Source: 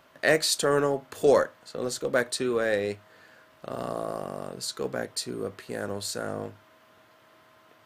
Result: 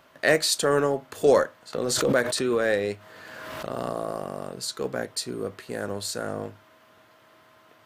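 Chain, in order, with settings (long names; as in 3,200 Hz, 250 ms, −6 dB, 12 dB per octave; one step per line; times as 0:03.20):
0:01.73–0:03.90: background raised ahead of every attack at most 26 dB per second
level +1.5 dB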